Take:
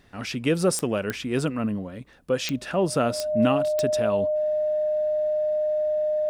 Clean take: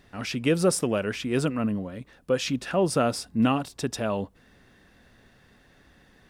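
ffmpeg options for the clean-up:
ffmpeg -i in.wav -af "adeclick=threshold=4,bandreject=frequency=610:width=30" out.wav

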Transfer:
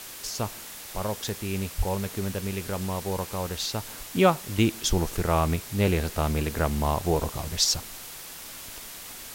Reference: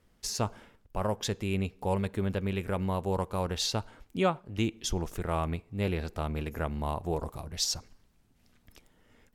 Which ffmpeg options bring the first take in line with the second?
ffmpeg -i in.wav -filter_complex "[0:a]adeclick=threshold=4,asplit=3[link_01][link_02][link_03];[link_01]afade=type=out:start_time=1.77:duration=0.02[link_04];[link_02]highpass=frequency=140:width=0.5412,highpass=frequency=140:width=1.3066,afade=type=in:start_time=1.77:duration=0.02,afade=type=out:start_time=1.89:duration=0.02[link_05];[link_03]afade=type=in:start_time=1.89:duration=0.02[link_06];[link_04][link_05][link_06]amix=inputs=3:normalize=0,afwtdn=0.01,asetnsamples=nb_out_samples=441:pad=0,asendcmd='3.88 volume volume -7dB',volume=0dB" out.wav

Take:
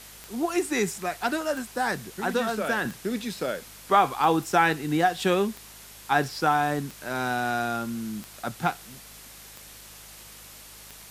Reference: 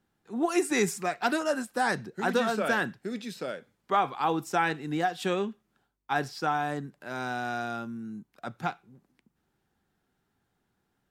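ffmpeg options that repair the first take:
ffmpeg -i in.wav -af "adeclick=threshold=4,bandreject=frequency=51.9:width_type=h:width=4,bandreject=frequency=103.8:width_type=h:width=4,bandreject=frequency=155.7:width_type=h:width=4,bandreject=frequency=207.6:width_type=h:width=4,afwtdn=0.0056,asetnsamples=nb_out_samples=441:pad=0,asendcmd='2.85 volume volume -5.5dB',volume=0dB" out.wav

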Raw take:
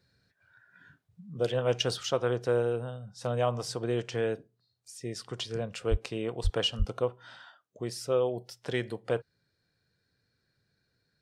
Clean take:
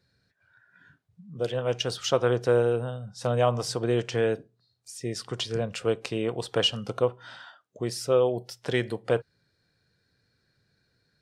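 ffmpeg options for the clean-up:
ffmpeg -i in.wav -filter_complex "[0:a]asplit=3[link_01][link_02][link_03];[link_01]afade=type=out:start_time=5.9:duration=0.02[link_04];[link_02]highpass=frequency=140:width=0.5412,highpass=frequency=140:width=1.3066,afade=type=in:start_time=5.9:duration=0.02,afade=type=out:start_time=6.02:duration=0.02[link_05];[link_03]afade=type=in:start_time=6.02:duration=0.02[link_06];[link_04][link_05][link_06]amix=inputs=3:normalize=0,asplit=3[link_07][link_08][link_09];[link_07]afade=type=out:start_time=6.43:duration=0.02[link_10];[link_08]highpass=frequency=140:width=0.5412,highpass=frequency=140:width=1.3066,afade=type=in:start_time=6.43:duration=0.02,afade=type=out:start_time=6.55:duration=0.02[link_11];[link_09]afade=type=in:start_time=6.55:duration=0.02[link_12];[link_10][link_11][link_12]amix=inputs=3:normalize=0,asplit=3[link_13][link_14][link_15];[link_13]afade=type=out:start_time=6.78:duration=0.02[link_16];[link_14]highpass=frequency=140:width=0.5412,highpass=frequency=140:width=1.3066,afade=type=in:start_time=6.78:duration=0.02,afade=type=out:start_time=6.9:duration=0.02[link_17];[link_15]afade=type=in:start_time=6.9:duration=0.02[link_18];[link_16][link_17][link_18]amix=inputs=3:normalize=0,asetnsamples=nb_out_samples=441:pad=0,asendcmd='2.03 volume volume 5dB',volume=0dB" out.wav

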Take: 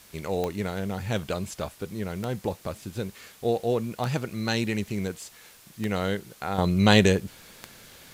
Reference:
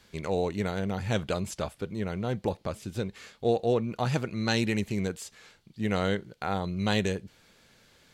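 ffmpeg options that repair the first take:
ffmpeg -i in.wav -af "adeclick=threshold=4,afwtdn=0.0025,asetnsamples=nb_out_samples=441:pad=0,asendcmd='6.58 volume volume -9dB',volume=0dB" out.wav

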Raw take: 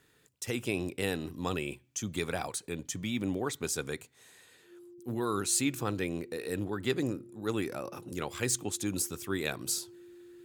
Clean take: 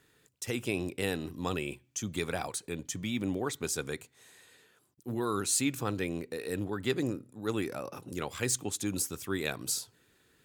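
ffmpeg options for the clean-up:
ffmpeg -i in.wav -af "bandreject=frequency=350:width=30" out.wav

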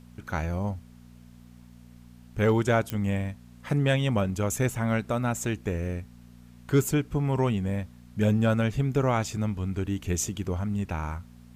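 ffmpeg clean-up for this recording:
ffmpeg -i in.wav -af "adeclick=threshold=4,bandreject=frequency=60.1:width_type=h:width=4,bandreject=frequency=120.2:width_type=h:width=4,bandreject=frequency=180.3:width_type=h:width=4,bandreject=frequency=240.4:width_type=h:width=4,agate=range=-21dB:threshold=-42dB" out.wav

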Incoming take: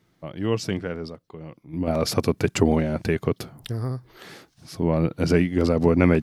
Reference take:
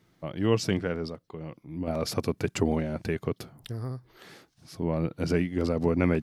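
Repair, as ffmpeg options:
ffmpeg -i in.wav -af "asetnsamples=nb_out_samples=441:pad=0,asendcmd='1.73 volume volume -6.5dB',volume=0dB" out.wav

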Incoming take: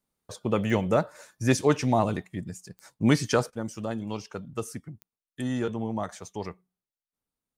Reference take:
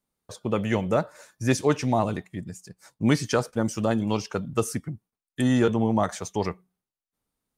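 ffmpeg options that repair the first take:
ffmpeg -i in.wav -af "adeclick=threshold=4,asetnsamples=nb_out_samples=441:pad=0,asendcmd='3.5 volume volume 8dB',volume=0dB" out.wav

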